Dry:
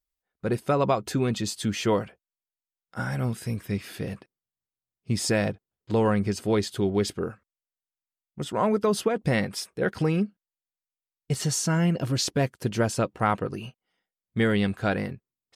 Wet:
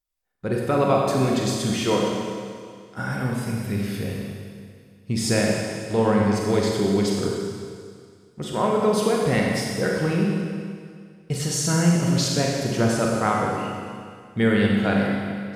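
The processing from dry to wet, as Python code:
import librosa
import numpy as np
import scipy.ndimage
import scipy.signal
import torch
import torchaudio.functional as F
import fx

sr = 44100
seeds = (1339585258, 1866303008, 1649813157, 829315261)

y = fx.rev_schroeder(x, sr, rt60_s=2.1, comb_ms=31, drr_db=-2.0)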